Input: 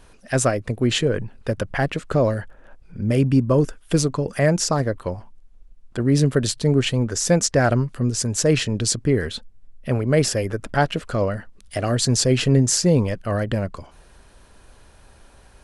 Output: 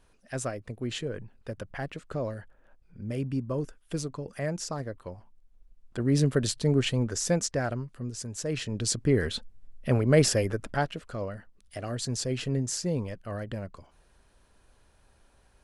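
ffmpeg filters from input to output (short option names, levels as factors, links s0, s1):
-af "volume=1.88,afade=t=in:st=5.16:d=1.04:silence=0.421697,afade=t=out:st=7.05:d=0.71:silence=0.398107,afade=t=in:st=8.5:d=0.84:silence=0.266073,afade=t=out:st=10.37:d=0.58:silence=0.316228"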